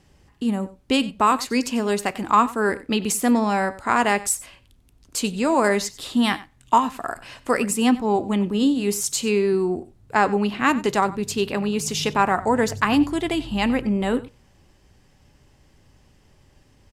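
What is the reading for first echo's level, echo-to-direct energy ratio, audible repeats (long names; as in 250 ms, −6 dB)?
−18.0 dB, −18.0 dB, 1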